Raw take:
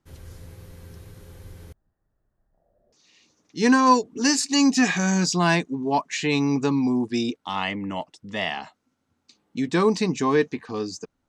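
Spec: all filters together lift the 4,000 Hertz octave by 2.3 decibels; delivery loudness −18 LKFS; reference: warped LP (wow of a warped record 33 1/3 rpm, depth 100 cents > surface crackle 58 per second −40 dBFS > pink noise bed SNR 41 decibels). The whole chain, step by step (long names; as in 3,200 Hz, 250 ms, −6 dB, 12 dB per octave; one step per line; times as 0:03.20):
parametric band 4,000 Hz +3 dB
wow of a warped record 33 1/3 rpm, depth 100 cents
surface crackle 58 per second −40 dBFS
pink noise bed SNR 41 dB
level +4.5 dB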